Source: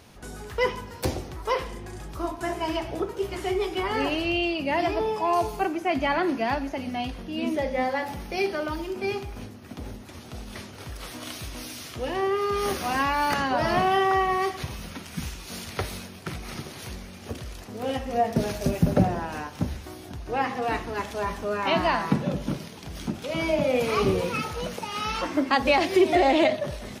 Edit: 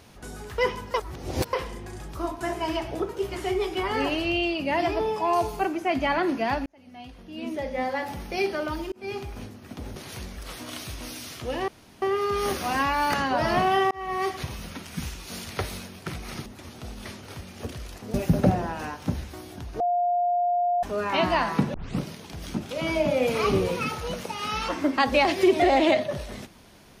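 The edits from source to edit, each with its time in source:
0:00.94–0:01.53: reverse
0:06.66–0:08.18: fade in linear
0:08.92–0:09.23: fade in
0:09.96–0:10.91: swap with 0:16.66–0:17.07
0:12.22: splice in room tone 0.34 s
0:14.11–0:14.48: fade in
0:17.80–0:18.67: remove
0:20.33–0:21.36: beep over 706 Hz −20.5 dBFS
0:22.27: tape start 0.26 s

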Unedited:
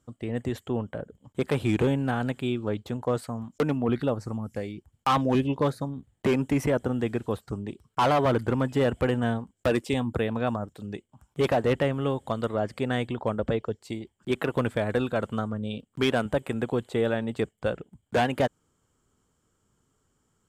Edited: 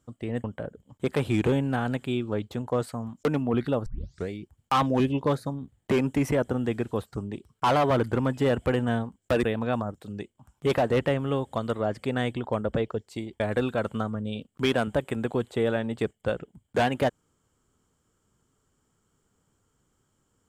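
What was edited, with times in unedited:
0:00.44–0:00.79: remove
0:04.21: tape start 0.43 s
0:09.78–0:10.17: remove
0:14.14–0:14.78: remove

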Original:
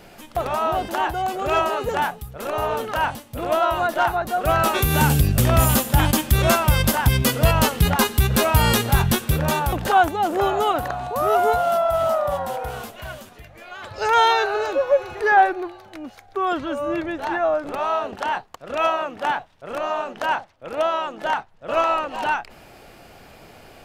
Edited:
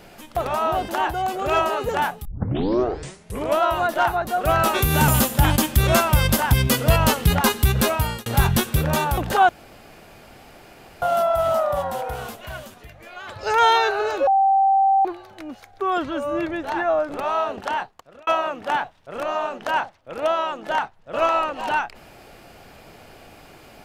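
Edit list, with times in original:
0:02.25: tape start 1.35 s
0:05.08–0:05.63: remove
0:08.34–0:08.81: fade out
0:10.04–0:11.57: fill with room tone
0:14.82–0:15.60: beep over 779 Hz −13.5 dBFS
0:18.24–0:18.82: fade out

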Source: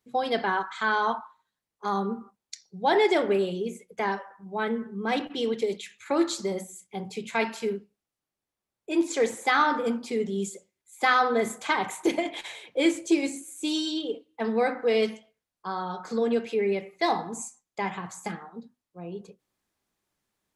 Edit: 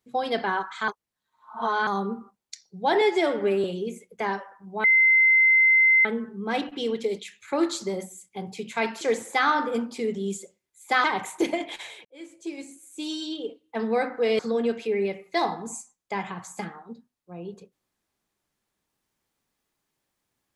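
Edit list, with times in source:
0:00.88–0:01.87: reverse
0:03.01–0:03.43: time-stretch 1.5×
0:04.63: insert tone 2,070 Hz −14.5 dBFS 1.21 s
0:07.59–0:09.13: remove
0:11.16–0:11.69: remove
0:12.70–0:14.42: fade in
0:15.04–0:16.06: remove

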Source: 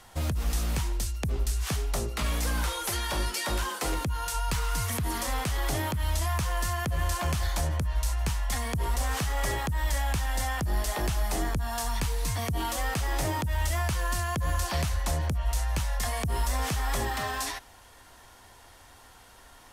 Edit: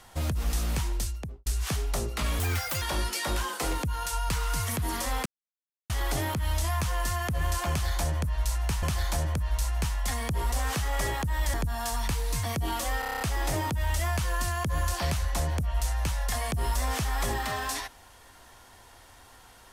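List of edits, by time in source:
0:01.03–0:01.46: fade out and dull
0:02.39–0:03.03: play speed 150%
0:05.47: splice in silence 0.64 s
0:07.27–0:08.40: repeat, 2 plays
0:09.98–0:11.46: remove
0:12.92: stutter 0.03 s, 8 plays

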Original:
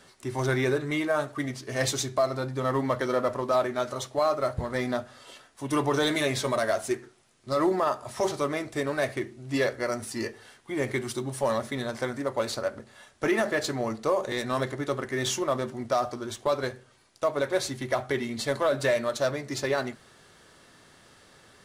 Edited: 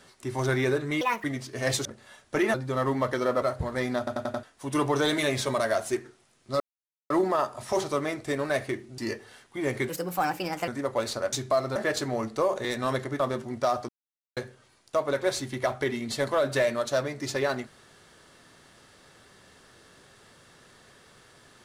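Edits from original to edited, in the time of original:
0:01.01–0:01.38: play speed 160%
0:01.99–0:02.42: swap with 0:12.74–0:13.43
0:03.30–0:04.40: remove
0:04.96: stutter in place 0.09 s, 5 plays
0:07.58: splice in silence 0.50 s
0:09.46–0:10.12: remove
0:11.03–0:12.09: play speed 135%
0:14.87–0:15.48: remove
0:16.17–0:16.65: silence

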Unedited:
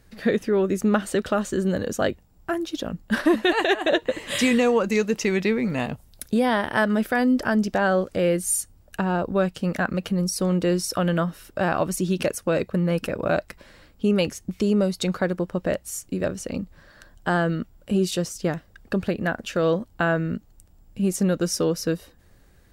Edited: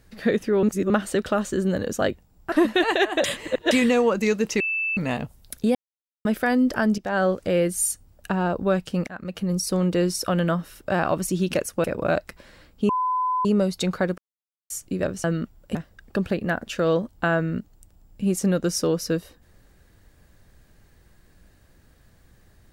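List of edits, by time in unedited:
0:00.63–0:00.90: reverse
0:02.52–0:03.21: remove
0:03.93–0:04.40: reverse
0:05.29–0:05.66: beep over 2,640 Hz −22.5 dBFS
0:06.44–0:06.94: silence
0:07.67–0:07.92: fade in, from −14.5 dB
0:09.76–0:10.26: fade in, from −20.5 dB
0:12.53–0:13.05: remove
0:14.10–0:14.66: beep over 1,010 Hz −20.5 dBFS
0:15.39–0:15.91: silence
0:16.45–0:17.42: remove
0:17.93–0:18.52: remove

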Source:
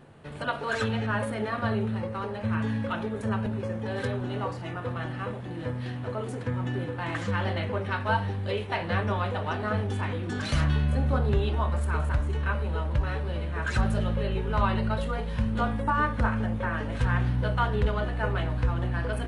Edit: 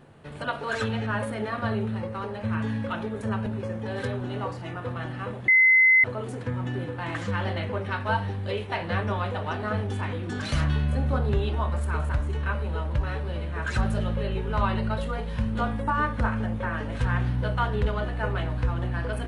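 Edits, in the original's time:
0:05.48–0:06.04: beep over 2,050 Hz −14 dBFS

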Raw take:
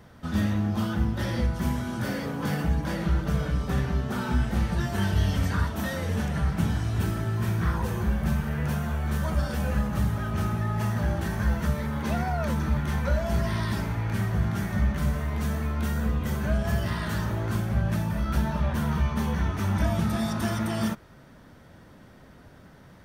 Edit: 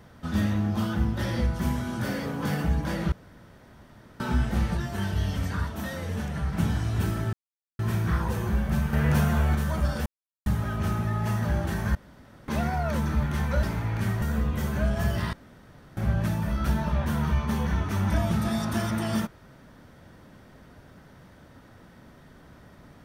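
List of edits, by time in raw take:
0:03.12–0:04.20: fill with room tone
0:04.77–0:06.53: clip gain −3.5 dB
0:07.33: splice in silence 0.46 s
0:08.47–0:09.09: clip gain +5.5 dB
0:09.60–0:10.00: silence
0:11.49–0:12.02: fill with room tone
0:13.17–0:13.76: remove
0:14.35–0:15.90: remove
0:17.01–0:17.65: fill with room tone

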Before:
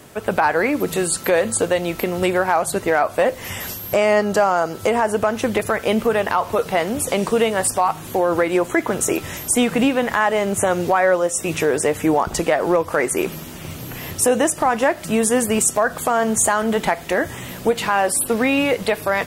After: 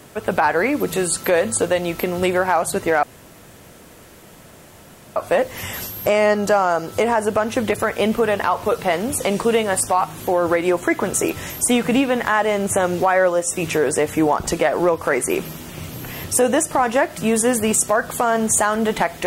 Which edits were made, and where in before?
0:03.03: splice in room tone 2.13 s

